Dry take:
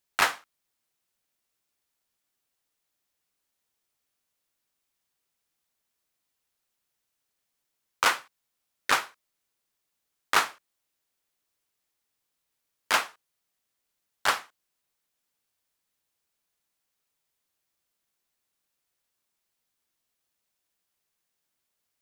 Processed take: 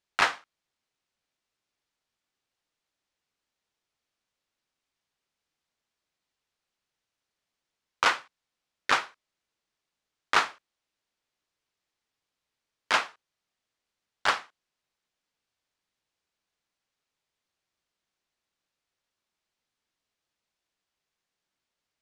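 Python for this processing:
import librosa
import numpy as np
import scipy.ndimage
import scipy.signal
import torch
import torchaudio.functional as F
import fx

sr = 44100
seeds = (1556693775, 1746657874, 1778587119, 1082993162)

y = scipy.signal.sosfilt(scipy.signal.butter(2, 5600.0, 'lowpass', fs=sr, output='sos'), x)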